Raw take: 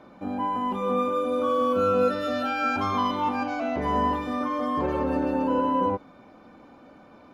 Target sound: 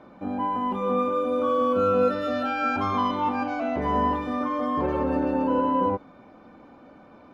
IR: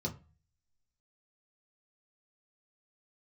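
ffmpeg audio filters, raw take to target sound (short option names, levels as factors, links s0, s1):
-af "highshelf=f=4500:g=-9.5,volume=1.12"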